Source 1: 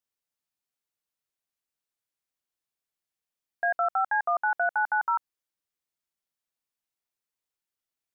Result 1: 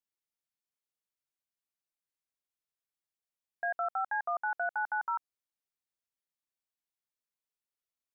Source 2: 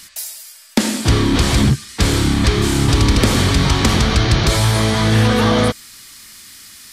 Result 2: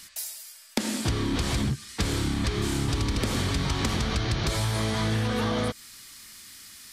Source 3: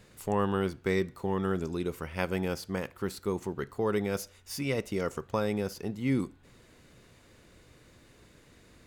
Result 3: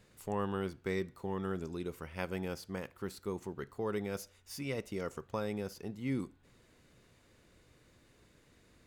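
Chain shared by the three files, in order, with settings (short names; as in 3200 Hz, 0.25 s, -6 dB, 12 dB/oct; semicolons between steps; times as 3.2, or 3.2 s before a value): compressor, threshold -16 dBFS; gain -7 dB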